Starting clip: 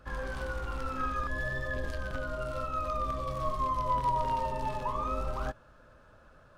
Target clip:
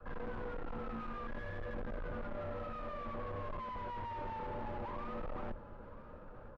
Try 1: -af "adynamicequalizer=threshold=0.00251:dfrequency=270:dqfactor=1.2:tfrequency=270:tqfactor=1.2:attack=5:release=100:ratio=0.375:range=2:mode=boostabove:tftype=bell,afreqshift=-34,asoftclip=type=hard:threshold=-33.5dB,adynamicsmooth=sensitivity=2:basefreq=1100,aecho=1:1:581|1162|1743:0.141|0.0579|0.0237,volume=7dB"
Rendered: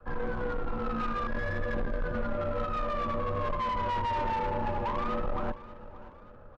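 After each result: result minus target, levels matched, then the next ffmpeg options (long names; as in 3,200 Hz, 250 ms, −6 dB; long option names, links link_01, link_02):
echo 404 ms early; hard clipping: distortion −4 dB
-af "adynamicequalizer=threshold=0.00251:dfrequency=270:dqfactor=1.2:tfrequency=270:tqfactor=1.2:attack=5:release=100:ratio=0.375:range=2:mode=boostabove:tftype=bell,afreqshift=-34,asoftclip=type=hard:threshold=-33.5dB,adynamicsmooth=sensitivity=2:basefreq=1100,aecho=1:1:985|1970|2955:0.141|0.0579|0.0237,volume=7dB"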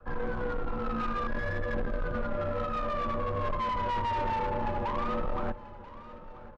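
hard clipping: distortion −4 dB
-af "adynamicequalizer=threshold=0.00251:dfrequency=270:dqfactor=1.2:tfrequency=270:tqfactor=1.2:attack=5:release=100:ratio=0.375:range=2:mode=boostabove:tftype=bell,afreqshift=-34,asoftclip=type=hard:threshold=-45dB,adynamicsmooth=sensitivity=2:basefreq=1100,aecho=1:1:985|1970|2955:0.141|0.0579|0.0237,volume=7dB"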